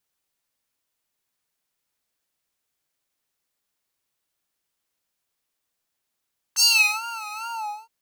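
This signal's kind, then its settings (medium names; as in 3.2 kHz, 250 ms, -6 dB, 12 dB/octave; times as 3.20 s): synth patch with vibrato A5, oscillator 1 square, oscillator 2 saw, interval +7 st, oscillator 2 level -6 dB, sub -21.5 dB, noise -28 dB, filter highpass, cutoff 550 Hz, Q 3.7, filter envelope 3.5 oct, filter decay 0.40 s, attack 41 ms, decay 0.40 s, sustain -20.5 dB, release 0.46 s, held 0.86 s, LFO 2.4 Hz, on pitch 97 cents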